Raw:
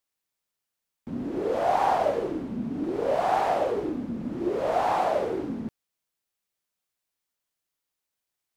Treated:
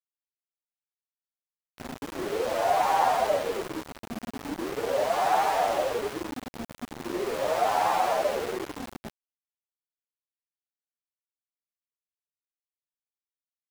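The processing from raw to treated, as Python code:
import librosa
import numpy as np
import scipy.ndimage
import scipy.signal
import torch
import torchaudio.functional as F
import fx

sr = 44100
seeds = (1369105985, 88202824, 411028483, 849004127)

y = fx.tilt_shelf(x, sr, db=-3.5, hz=690.0)
y = fx.hum_notches(y, sr, base_hz=50, count=7)
y = fx.stretch_vocoder(y, sr, factor=1.6)
y = np.where(np.abs(y) >= 10.0 ** (-32.0 / 20.0), y, 0.0)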